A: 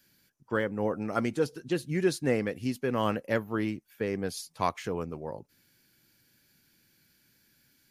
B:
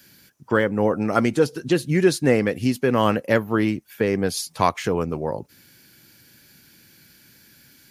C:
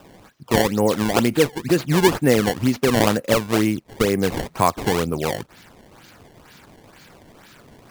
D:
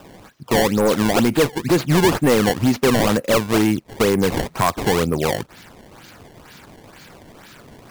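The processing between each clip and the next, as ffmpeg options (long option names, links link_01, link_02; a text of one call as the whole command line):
ffmpeg -i in.wav -filter_complex "[0:a]asplit=2[link_01][link_02];[link_02]acompressor=threshold=-37dB:ratio=6,volume=1.5dB[link_03];[link_01][link_03]amix=inputs=2:normalize=0,highpass=44,volume=7dB" out.wav
ffmpeg -i in.wav -filter_complex "[0:a]asplit=2[link_01][link_02];[link_02]acompressor=threshold=-28dB:ratio=6,volume=-2dB[link_03];[link_01][link_03]amix=inputs=2:normalize=0,acrusher=samples=20:mix=1:aa=0.000001:lfo=1:lforange=32:lforate=2.1" out.wav
ffmpeg -i in.wav -af "volume=15dB,asoftclip=hard,volume=-15dB,volume=4dB" out.wav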